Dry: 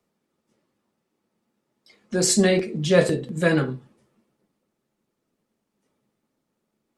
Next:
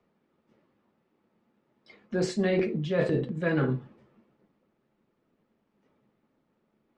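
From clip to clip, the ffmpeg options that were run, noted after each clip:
-af "lowpass=2700,areverse,acompressor=threshold=0.0447:ratio=8,areverse,volume=1.58"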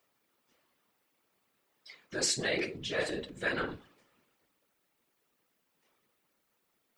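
-af "equalizer=f=73:w=0.34:g=-14.5,crystalizer=i=8:c=0,afftfilt=real='hypot(re,im)*cos(2*PI*random(0))':imag='hypot(re,im)*sin(2*PI*random(1))':win_size=512:overlap=0.75"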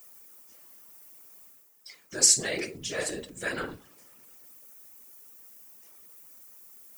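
-af "areverse,acompressor=mode=upward:threshold=0.00178:ratio=2.5,areverse,aexciter=amount=5.1:drive=5.6:freq=5400"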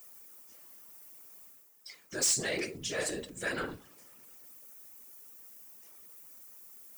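-af "asoftclip=type=tanh:threshold=0.0708,volume=0.891"

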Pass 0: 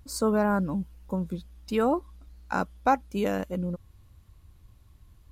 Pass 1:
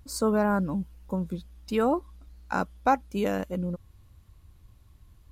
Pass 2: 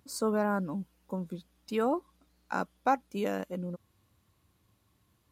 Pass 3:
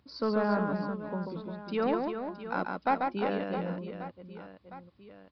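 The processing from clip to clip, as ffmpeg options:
-af anull
-af "highpass=170,volume=0.631"
-filter_complex "[0:a]acrossover=split=980[s0][s1];[s0]volume=16.8,asoftclip=hard,volume=0.0596[s2];[s2][s1]amix=inputs=2:normalize=0,aecho=1:1:140|350|665|1138|1846:0.631|0.398|0.251|0.158|0.1,aresample=11025,aresample=44100"

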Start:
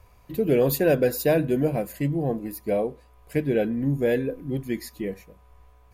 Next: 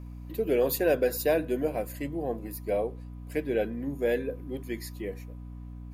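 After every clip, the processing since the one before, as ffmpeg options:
-af "highpass=320,aeval=exprs='val(0)+0.0141*(sin(2*PI*60*n/s)+sin(2*PI*2*60*n/s)/2+sin(2*PI*3*60*n/s)/3+sin(2*PI*4*60*n/s)/4+sin(2*PI*5*60*n/s)/5)':c=same,volume=0.708"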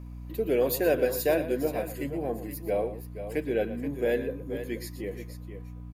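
-af "aecho=1:1:118|477:0.211|0.299"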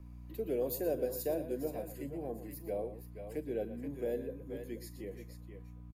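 -filter_complex "[0:a]acrossover=split=180|850|4800[s0][s1][s2][s3];[s2]acompressor=threshold=0.00316:ratio=6[s4];[s3]asplit=2[s5][s6];[s6]adelay=41,volume=0.266[s7];[s5][s7]amix=inputs=2:normalize=0[s8];[s0][s1][s4][s8]amix=inputs=4:normalize=0,volume=0.376"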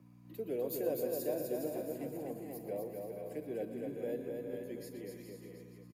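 -filter_complex "[0:a]highpass=f=120:w=0.5412,highpass=f=120:w=1.3066,asplit=2[s0][s1];[s1]aecho=0:1:250|412.5|518.1|586.8|631.4:0.631|0.398|0.251|0.158|0.1[s2];[s0][s2]amix=inputs=2:normalize=0,volume=0.708"

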